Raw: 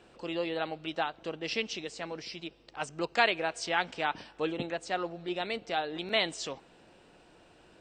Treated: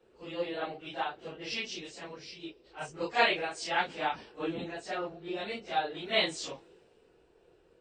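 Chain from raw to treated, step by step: phase scrambler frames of 0.1 s; band noise 330–510 Hz -55 dBFS; three-band expander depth 40%; gain -2 dB

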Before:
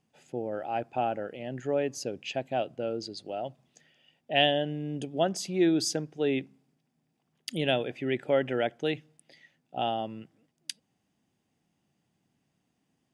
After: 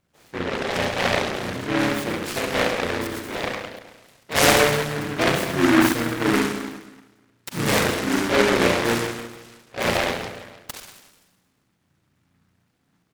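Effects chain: harmoniser -12 st -16 dB, -5 st -1 dB; spring tank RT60 1.2 s, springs 34/56 ms, chirp 65 ms, DRR -4 dB; noise-modulated delay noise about 1300 Hz, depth 0.25 ms

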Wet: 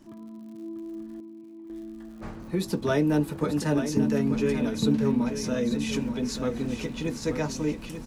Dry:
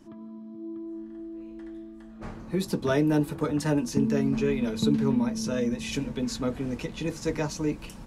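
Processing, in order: crackle 140/s -46 dBFS; 1.2–1.7 vowel filter u; feedback echo 0.886 s, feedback 33%, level -9 dB

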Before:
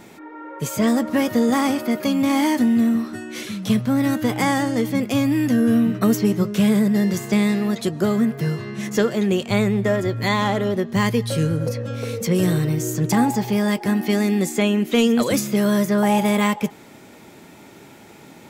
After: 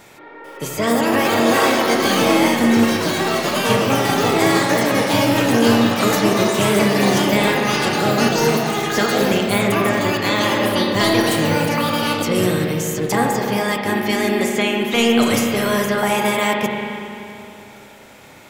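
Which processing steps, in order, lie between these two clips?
spectral limiter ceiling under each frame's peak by 13 dB; spring tank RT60 2.8 s, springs 30/38 ms, chirp 35 ms, DRR 0.5 dB; echoes that change speed 0.443 s, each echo +6 st, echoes 3; gain -1.5 dB

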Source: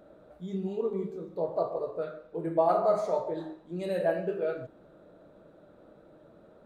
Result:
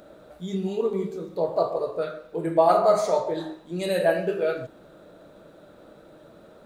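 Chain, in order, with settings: high shelf 2100 Hz +11.5 dB; gain +5 dB

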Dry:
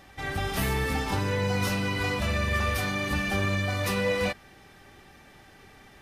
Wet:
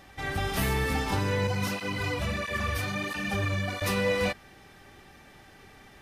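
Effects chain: 1.47–3.82 tape flanging out of phase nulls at 1.5 Hz, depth 5.4 ms

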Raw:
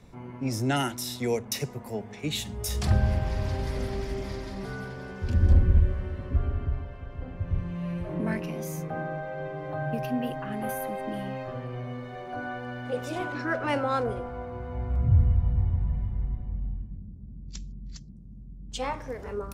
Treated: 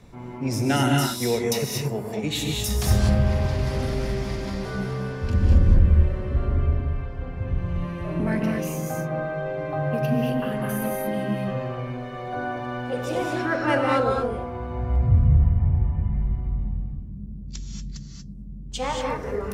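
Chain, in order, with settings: 15.28–16.1 polynomial smoothing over 25 samples; in parallel at -7 dB: soft clip -19.5 dBFS, distortion -11 dB; on the sum: non-linear reverb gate 0.26 s rising, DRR 0 dB

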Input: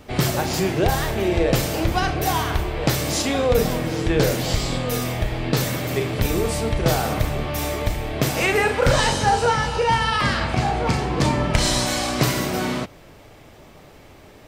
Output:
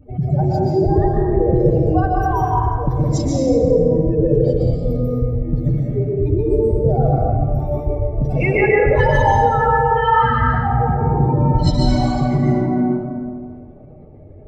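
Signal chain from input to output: spectral contrast raised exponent 3.1; plate-style reverb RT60 1.9 s, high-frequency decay 0.55×, pre-delay 0.11 s, DRR -4 dB

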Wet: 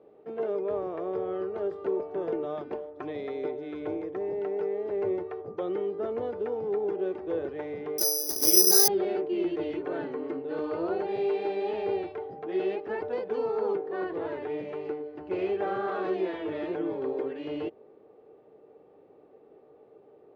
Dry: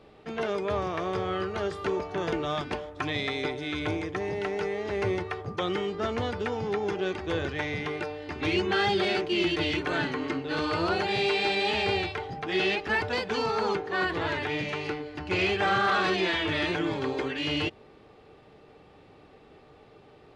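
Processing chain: band-pass 450 Hz, Q 1.9; 7.98–8.88 careless resampling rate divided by 8×, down filtered, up zero stuff; gain +2 dB

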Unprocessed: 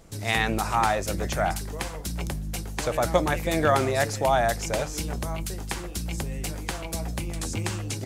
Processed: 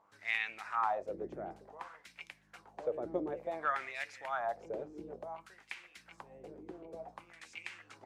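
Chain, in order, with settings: buzz 100 Hz, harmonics 11, -57 dBFS -4 dB/oct; wah 0.56 Hz 350–2400 Hz, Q 3.7; gain -4 dB

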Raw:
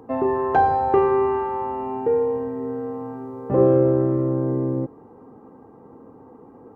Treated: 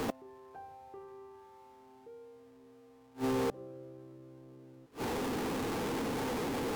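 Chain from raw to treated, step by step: zero-crossing step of -28.5 dBFS; flipped gate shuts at -22 dBFS, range -31 dB; gain -2 dB; Vorbis 128 kbps 48000 Hz

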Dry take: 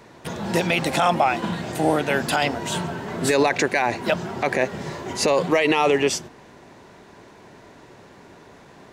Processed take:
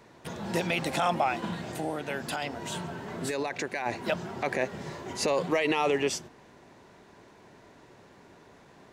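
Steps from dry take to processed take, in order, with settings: 1.72–3.86 compressor 2:1, threshold -25 dBFS, peak gain reduction 6.5 dB; gain -7.5 dB

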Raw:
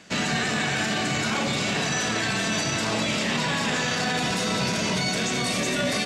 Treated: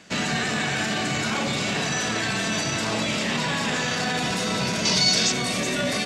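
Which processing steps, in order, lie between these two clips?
4.85–5.32 bell 5000 Hz +12.5 dB 1 oct

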